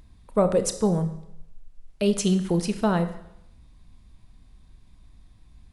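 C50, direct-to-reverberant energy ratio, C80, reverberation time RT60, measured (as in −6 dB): 12.0 dB, 9.0 dB, 14.5 dB, 0.80 s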